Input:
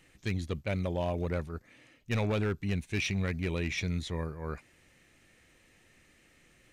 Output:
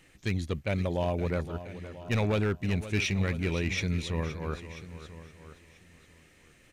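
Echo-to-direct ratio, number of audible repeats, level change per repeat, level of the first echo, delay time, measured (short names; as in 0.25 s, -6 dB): -11.5 dB, 4, no steady repeat, -13.5 dB, 0.52 s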